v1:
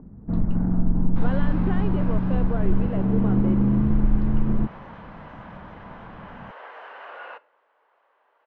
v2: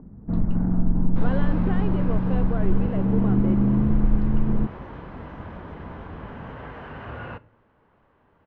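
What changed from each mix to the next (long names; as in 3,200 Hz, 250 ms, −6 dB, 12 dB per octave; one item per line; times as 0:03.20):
second sound: remove high-pass filter 530 Hz 24 dB per octave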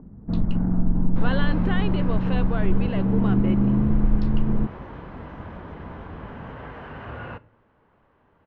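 speech: remove resonant band-pass 420 Hz, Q 0.64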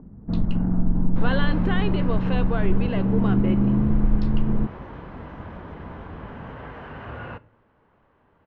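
speech: send on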